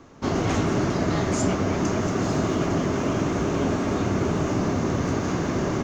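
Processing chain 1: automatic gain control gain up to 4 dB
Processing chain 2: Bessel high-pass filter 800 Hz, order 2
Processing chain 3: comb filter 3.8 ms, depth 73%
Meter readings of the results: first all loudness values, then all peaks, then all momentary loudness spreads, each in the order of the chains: −20.5, −32.0, −23.0 LKFS; −7.5, −18.0, −9.5 dBFS; 2, 3, 2 LU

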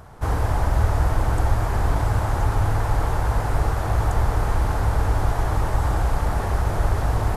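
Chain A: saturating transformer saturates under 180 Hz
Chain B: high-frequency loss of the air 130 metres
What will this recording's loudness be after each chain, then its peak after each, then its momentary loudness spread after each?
−26.0, −23.5 LKFS; −9.0, −6.5 dBFS; 2, 2 LU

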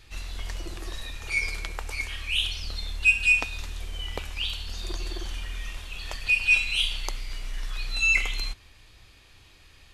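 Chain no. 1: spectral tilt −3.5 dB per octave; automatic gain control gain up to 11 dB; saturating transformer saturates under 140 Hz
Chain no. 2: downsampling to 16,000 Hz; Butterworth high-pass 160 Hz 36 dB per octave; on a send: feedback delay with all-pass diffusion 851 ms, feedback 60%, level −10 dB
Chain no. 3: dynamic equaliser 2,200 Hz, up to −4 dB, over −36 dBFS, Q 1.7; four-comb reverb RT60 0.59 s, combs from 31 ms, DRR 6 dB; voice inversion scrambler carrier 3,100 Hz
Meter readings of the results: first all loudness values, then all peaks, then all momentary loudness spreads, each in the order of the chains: −21.5, −26.5, −25.5 LKFS; −2.0, −8.5, −10.5 dBFS; 14, 18, 7 LU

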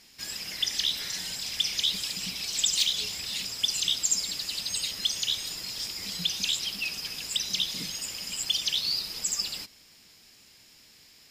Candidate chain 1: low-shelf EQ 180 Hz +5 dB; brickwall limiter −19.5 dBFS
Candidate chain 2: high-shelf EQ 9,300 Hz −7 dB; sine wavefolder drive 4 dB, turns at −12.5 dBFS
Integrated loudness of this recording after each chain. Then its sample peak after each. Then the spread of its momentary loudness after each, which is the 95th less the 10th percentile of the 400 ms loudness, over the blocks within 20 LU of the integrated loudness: −29.5, −22.0 LKFS; −19.5, −12.0 dBFS; 5, 7 LU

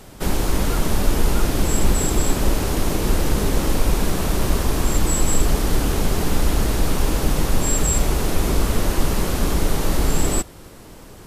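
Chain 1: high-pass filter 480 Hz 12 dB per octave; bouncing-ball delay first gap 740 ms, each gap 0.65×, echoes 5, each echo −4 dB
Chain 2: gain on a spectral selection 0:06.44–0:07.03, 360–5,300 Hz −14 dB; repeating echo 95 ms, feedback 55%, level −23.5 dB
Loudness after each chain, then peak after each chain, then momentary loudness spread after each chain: −24.0, −22.0 LKFS; −11.0, −4.0 dBFS; 5, 2 LU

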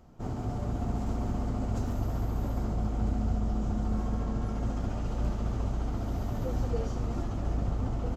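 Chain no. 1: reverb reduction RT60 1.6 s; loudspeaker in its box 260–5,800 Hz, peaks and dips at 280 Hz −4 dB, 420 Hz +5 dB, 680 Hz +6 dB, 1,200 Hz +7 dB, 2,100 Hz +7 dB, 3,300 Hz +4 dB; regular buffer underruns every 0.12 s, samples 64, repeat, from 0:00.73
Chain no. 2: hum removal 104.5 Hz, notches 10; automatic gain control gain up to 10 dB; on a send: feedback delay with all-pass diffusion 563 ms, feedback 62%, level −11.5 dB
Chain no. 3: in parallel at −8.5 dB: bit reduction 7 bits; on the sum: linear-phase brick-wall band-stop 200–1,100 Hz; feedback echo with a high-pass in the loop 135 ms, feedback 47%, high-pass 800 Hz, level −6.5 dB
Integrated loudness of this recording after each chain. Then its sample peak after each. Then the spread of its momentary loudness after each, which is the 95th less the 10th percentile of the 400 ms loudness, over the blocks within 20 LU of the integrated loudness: −40.5, −23.0, −31.5 LKFS; −22.5, −7.5, −16.0 dBFS; 3, 3, 3 LU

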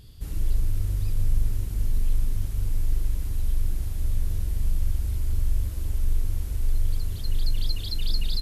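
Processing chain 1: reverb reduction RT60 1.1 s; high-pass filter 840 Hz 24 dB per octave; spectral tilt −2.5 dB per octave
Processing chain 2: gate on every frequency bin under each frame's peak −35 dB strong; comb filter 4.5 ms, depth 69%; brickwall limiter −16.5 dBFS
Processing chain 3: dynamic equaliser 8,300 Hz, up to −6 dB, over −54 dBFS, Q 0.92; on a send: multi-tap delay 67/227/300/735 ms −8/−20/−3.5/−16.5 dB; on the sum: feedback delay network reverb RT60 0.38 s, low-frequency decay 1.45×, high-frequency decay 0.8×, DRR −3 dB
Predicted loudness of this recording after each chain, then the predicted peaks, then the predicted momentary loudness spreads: −49.0, −31.0, −24.5 LKFS; −30.0, −16.5, −8.0 dBFS; 17, 2, 3 LU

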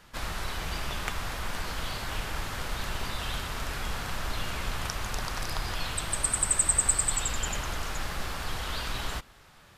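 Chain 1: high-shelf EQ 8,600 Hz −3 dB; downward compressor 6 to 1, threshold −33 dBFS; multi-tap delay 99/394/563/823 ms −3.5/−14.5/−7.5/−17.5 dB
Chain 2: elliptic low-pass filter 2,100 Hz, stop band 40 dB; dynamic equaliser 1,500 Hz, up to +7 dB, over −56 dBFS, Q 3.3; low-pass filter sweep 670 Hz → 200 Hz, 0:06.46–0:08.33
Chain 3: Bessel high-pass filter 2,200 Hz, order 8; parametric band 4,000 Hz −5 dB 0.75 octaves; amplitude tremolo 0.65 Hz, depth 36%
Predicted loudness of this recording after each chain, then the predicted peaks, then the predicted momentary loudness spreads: −36.0, −37.5, −35.0 LKFS; −18.5, −20.0, −14.0 dBFS; 4, 4, 17 LU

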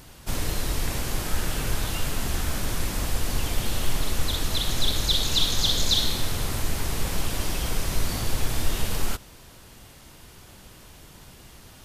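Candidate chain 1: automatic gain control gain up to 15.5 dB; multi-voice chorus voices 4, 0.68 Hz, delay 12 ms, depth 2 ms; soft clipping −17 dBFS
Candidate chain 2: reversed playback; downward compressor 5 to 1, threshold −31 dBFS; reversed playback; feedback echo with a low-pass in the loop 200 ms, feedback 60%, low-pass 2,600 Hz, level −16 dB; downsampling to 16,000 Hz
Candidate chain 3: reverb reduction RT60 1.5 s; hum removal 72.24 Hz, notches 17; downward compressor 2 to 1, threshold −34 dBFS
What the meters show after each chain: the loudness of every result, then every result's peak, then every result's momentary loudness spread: −27.5, −38.0, −36.5 LKFS; −17.0, −20.0, −18.5 dBFS; 11, 15, 19 LU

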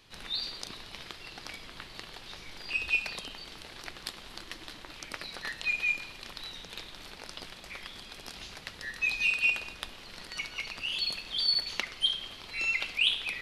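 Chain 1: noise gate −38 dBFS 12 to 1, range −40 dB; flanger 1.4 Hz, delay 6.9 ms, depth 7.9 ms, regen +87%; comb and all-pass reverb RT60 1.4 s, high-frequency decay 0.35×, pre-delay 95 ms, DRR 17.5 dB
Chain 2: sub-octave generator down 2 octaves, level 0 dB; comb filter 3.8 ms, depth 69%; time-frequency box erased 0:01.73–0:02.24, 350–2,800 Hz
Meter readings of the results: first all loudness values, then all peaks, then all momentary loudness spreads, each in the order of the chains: −34.0, −30.0 LKFS; −16.0, −11.5 dBFS; 20, 17 LU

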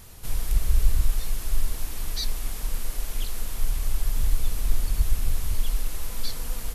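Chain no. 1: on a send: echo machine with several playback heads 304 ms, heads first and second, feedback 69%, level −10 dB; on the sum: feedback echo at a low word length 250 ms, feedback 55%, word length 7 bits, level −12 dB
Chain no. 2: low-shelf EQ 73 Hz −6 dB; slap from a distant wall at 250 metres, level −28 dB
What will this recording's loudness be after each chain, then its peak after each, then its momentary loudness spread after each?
−28.5, −33.5 LKFS; −6.0, −11.0 dBFS; 5, 5 LU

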